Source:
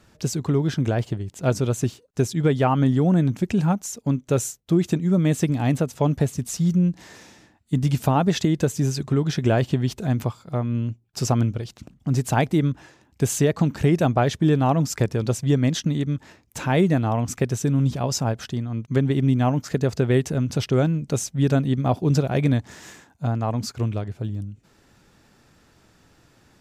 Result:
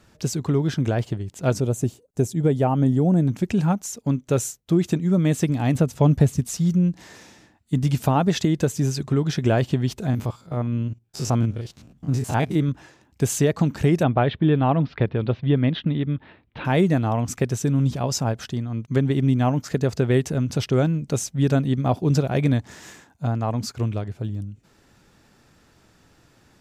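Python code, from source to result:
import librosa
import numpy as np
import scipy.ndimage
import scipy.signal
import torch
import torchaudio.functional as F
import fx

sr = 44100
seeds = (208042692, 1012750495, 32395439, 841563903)

y = fx.band_shelf(x, sr, hz=2400.0, db=-8.5, octaves=2.7, at=(1.6, 3.28))
y = fx.low_shelf(y, sr, hz=190.0, db=8.5, at=(5.75, 6.41))
y = fx.spec_steps(y, sr, hold_ms=50, at=(10.1, 12.69))
y = fx.steep_lowpass(y, sr, hz=3800.0, slope=48, at=(14.03, 16.65))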